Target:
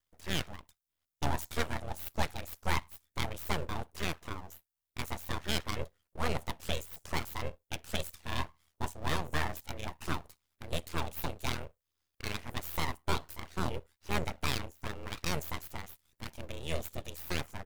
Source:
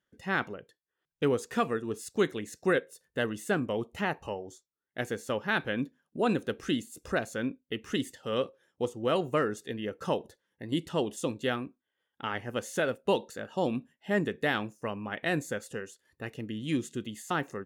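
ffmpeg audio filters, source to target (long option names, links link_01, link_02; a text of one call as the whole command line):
ffmpeg -i in.wav -af "aeval=exprs='val(0)*sin(2*PI*40*n/s)':channel_layout=same,aeval=exprs='abs(val(0))':channel_layout=same,crystalizer=i=1.5:c=0" out.wav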